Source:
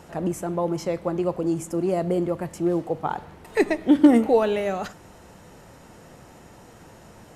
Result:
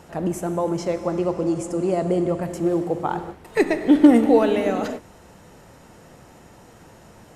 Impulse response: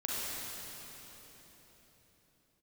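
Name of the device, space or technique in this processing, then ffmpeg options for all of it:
keyed gated reverb: -filter_complex "[0:a]asettb=1/sr,asplit=3[s0][s1][s2];[s0]atrim=end=0.564[s3];[s1]atrim=start=0.56:end=2.43,asetpts=PTS-STARTPTS,afade=t=in:d=0.004:c=qsin,afade=t=out:st=1.866:d=0.004:c=qsin,lowpass=f=9800:w=0.5412,lowpass=f=9800:w=1.3066[s4];[s2]atrim=start=2.426[s5];[s3][s4]acrossfade=d=0.004:c1=hsin:c2=qsin[s6];[s6][s5]acrossfade=d=0.004:c1=qsin:c2=hsin,asplit=3[s7][s8][s9];[1:a]atrim=start_sample=2205[s10];[s8][s10]afir=irnorm=-1:irlink=0[s11];[s9]apad=whole_len=324414[s12];[s11][s12]sidechaingate=range=0.0224:threshold=0.00891:ratio=16:detection=peak,volume=0.251[s13];[s7][s13]amix=inputs=2:normalize=0"

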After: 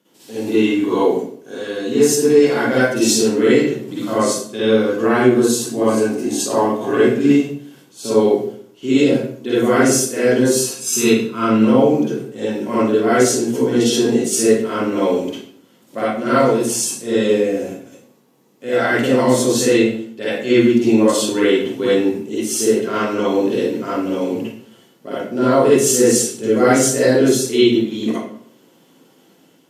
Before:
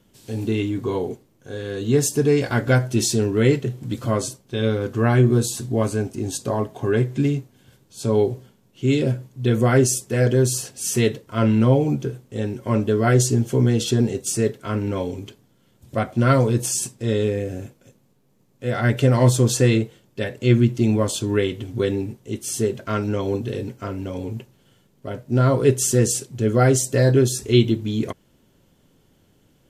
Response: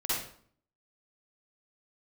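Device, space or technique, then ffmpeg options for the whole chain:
far laptop microphone: -filter_complex "[0:a]asettb=1/sr,asplit=3[s0][s1][s2];[s0]atrim=end=10.664[s3];[s1]atrim=start=10.66:end=11.45,asetpts=PTS-STARTPTS,afade=t=in:d=0.004:c=qsin,afade=t=out:st=0.786:d=0.004:c=qsin,aecho=1:1:0.8:0.64,atrim=end_sample=34839[s4];[s2]atrim=start=11.446[s5];[s3][s4]acrossfade=d=0.004:c1=hsin:c2=qsin[s6];[s6][s5]acrossfade=d=0.004:c1=qsin:c2=hsin[s7];[1:a]atrim=start_sample=2205[s8];[s7][s8]afir=irnorm=-1:irlink=0,highpass=f=200:w=0.5412,highpass=f=200:w=1.3066,dynaudnorm=f=310:g=3:m=1.5"

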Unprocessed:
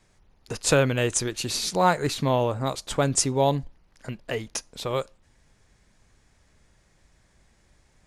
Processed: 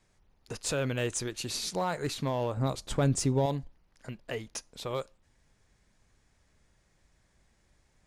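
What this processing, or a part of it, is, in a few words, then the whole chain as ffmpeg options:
limiter into clipper: -filter_complex "[0:a]alimiter=limit=0.188:level=0:latency=1:release=13,asoftclip=type=hard:threshold=0.15,asettb=1/sr,asplit=3[s0][s1][s2];[s0]atrim=end=2.574[s3];[s1]atrim=start=2.57:end=3.46,asetpts=PTS-STARTPTS,afade=t=in:d=0.004:c=qsin,afade=t=out:st=0.886:d=0.004:c=qsin,lowshelf=f=350:g=9[s4];[s2]atrim=start=3.456[s5];[s3][s4]acrossfade=d=0.004:c1=hsin:c2=qsin[s6];[s6][s5]acrossfade=d=0.004:c1=qsin:c2=hsin,volume=0.473"

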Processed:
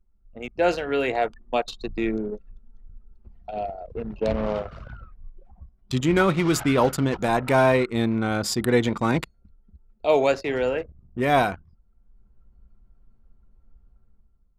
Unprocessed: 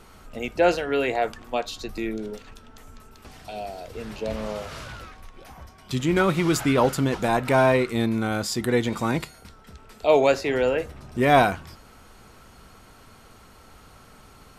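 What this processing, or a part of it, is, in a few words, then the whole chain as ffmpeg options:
voice memo with heavy noise removal: -af "anlmdn=15.8,dynaudnorm=f=170:g=7:m=3.76,volume=0.501"

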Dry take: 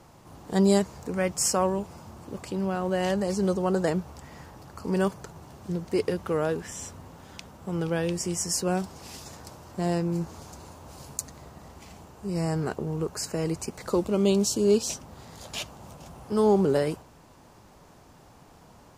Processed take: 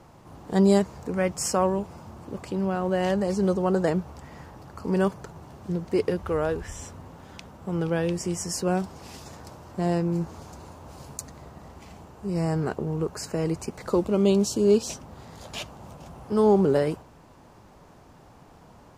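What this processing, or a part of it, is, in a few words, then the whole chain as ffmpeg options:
behind a face mask: -filter_complex "[0:a]asplit=3[s0][s1][s2];[s0]afade=t=out:st=6.22:d=0.02[s3];[s1]asubboost=boost=9.5:cutoff=58,afade=t=in:st=6.22:d=0.02,afade=t=out:st=6.8:d=0.02[s4];[s2]afade=t=in:st=6.8:d=0.02[s5];[s3][s4][s5]amix=inputs=3:normalize=0,highshelf=f=3400:g=-7,volume=1.26"

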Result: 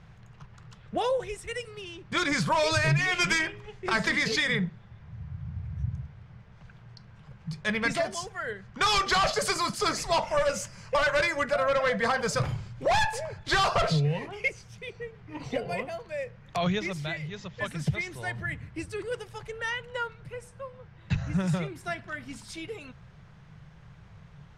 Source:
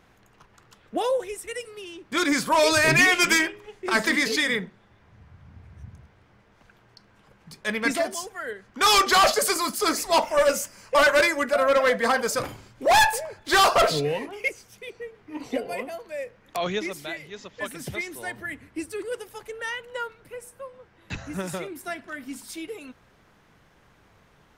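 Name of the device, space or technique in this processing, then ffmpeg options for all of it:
jukebox: -filter_complex "[0:a]lowpass=6400,lowshelf=f=200:t=q:w=3:g=9,acompressor=threshold=0.0794:ratio=6,asettb=1/sr,asplit=3[s0][s1][s2];[s0]atrim=end=20.484[s3];[s1]atrim=start=20.48:end=21.4,asetpts=PTS-STARTPTS,afade=t=in:d=0.004:c=qsin,afade=t=out:st=0.916:d=0.004:c=qsin,lowpass=9000[s4];[s2]atrim=start=21.396[s5];[s3][s4]acrossfade=d=0.004:c1=hsin:c2=qsin[s6];[s6][s5]acrossfade=d=0.004:c1=qsin:c2=hsin"

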